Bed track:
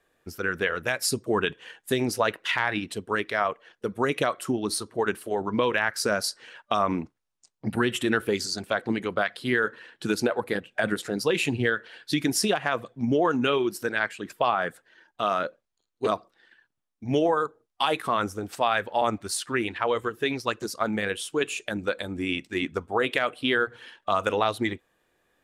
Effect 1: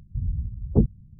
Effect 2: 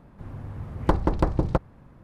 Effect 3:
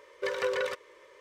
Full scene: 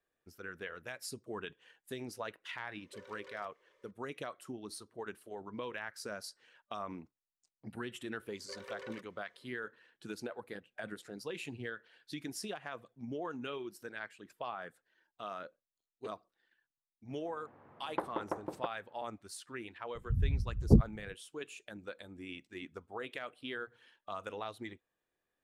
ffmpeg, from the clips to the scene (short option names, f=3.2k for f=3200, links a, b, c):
-filter_complex "[3:a]asplit=2[a][b];[0:a]volume=-17.5dB[c];[a]alimiter=level_in=3.5dB:limit=-24dB:level=0:latency=1:release=297,volume=-3.5dB[d];[2:a]highpass=400,lowpass=2.1k[e];[d]atrim=end=1.2,asetpts=PTS-STARTPTS,volume=-16.5dB,afade=t=in:d=0.004:c=hsin,afade=t=out:st=1.196:d=0.004:c=hsin,adelay=2710[f];[b]atrim=end=1.2,asetpts=PTS-STARTPTS,volume=-17dB,afade=t=in:d=0.004:c=hsin,afade=t=out:st=1.196:d=0.004:c=hsin,adelay=364266S[g];[e]atrim=end=2.03,asetpts=PTS-STARTPTS,volume=-10dB,afade=t=in:d=0.004:c=hsin,afade=t=out:st=2.026:d=0.004:c=hsin,adelay=17090[h];[1:a]atrim=end=1.19,asetpts=PTS-STARTPTS,volume=-3.5dB,afade=t=in:d=0.004:c=hsin,afade=t=out:st=1.186:d=0.004:c=hsin,adelay=19950[i];[c][f][g][h][i]amix=inputs=5:normalize=0"